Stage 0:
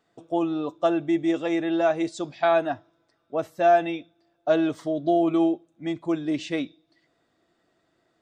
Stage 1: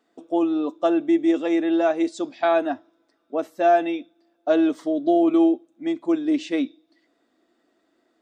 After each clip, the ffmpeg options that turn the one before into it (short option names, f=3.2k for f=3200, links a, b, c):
-af "lowshelf=f=190:t=q:w=3:g=-9.5"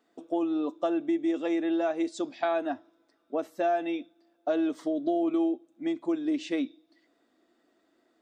-af "acompressor=threshold=-25dB:ratio=2.5,volume=-2dB"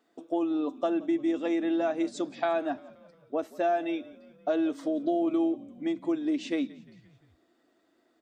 -filter_complex "[0:a]asplit=5[a][b][c][d][e];[b]adelay=175,afreqshift=-47,volume=-21dB[f];[c]adelay=350,afreqshift=-94,volume=-25.9dB[g];[d]adelay=525,afreqshift=-141,volume=-30.8dB[h];[e]adelay=700,afreqshift=-188,volume=-35.6dB[i];[a][f][g][h][i]amix=inputs=5:normalize=0"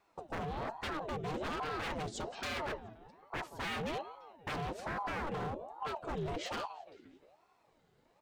-af "afreqshift=-180,aeval=exprs='0.0266*(abs(mod(val(0)/0.0266+3,4)-2)-1)':c=same,aeval=exprs='val(0)*sin(2*PI*590*n/s+590*0.55/1.2*sin(2*PI*1.2*n/s))':c=same,volume=1.5dB"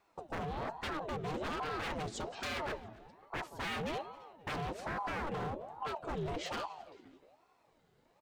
-af "aecho=1:1:266|532:0.0708|0.0191"